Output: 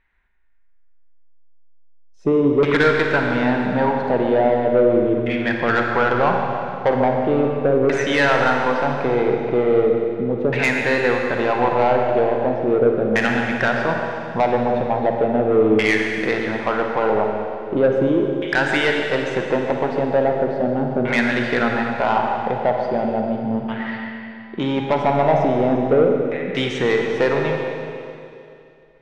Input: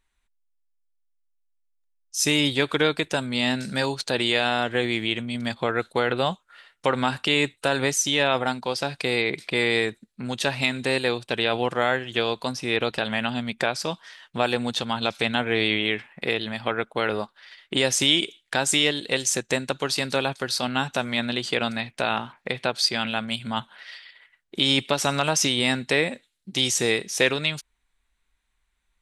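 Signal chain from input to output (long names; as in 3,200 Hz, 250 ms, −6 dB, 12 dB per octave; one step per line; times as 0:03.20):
parametric band 1,200 Hz −5.5 dB 0.21 octaves
echo with a time of its own for lows and highs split 440 Hz, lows 187 ms, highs 141 ms, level −11.5 dB
auto-filter low-pass saw down 0.38 Hz 410–2,000 Hz
soft clipping −15.5 dBFS, distortion −13 dB
four-comb reverb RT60 2.6 s, DRR 2.5 dB
level +5.5 dB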